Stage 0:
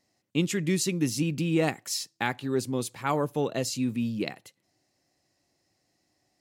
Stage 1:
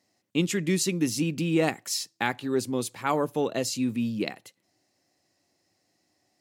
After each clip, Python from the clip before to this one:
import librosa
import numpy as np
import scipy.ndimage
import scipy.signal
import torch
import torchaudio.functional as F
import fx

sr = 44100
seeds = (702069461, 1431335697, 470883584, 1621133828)

y = scipy.signal.sosfilt(scipy.signal.butter(2, 93.0, 'highpass', fs=sr, output='sos'), x)
y = fx.peak_eq(y, sr, hz=140.0, db=-8.0, octaves=0.21)
y = y * 10.0 ** (1.5 / 20.0)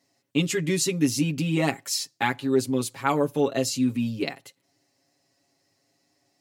y = x + 0.81 * np.pad(x, (int(7.3 * sr / 1000.0), 0))[:len(x)]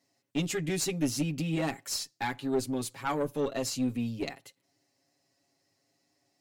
y = fx.diode_clip(x, sr, knee_db=-21.0)
y = y * 10.0 ** (-4.5 / 20.0)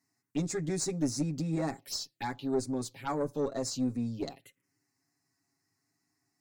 y = fx.env_phaser(x, sr, low_hz=560.0, high_hz=3000.0, full_db=-28.5)
y = y * 10.0 ** (-1.0 / 20.0)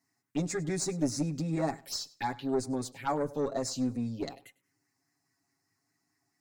y = fx.echo_feedback(x, sr, ms=100, feedback_pct=21, wet_db=-21.0)
y = fx.bell_lfo(y, sr, hz=4.8, low_hz=580.0, high_hz=2100.0, db=6)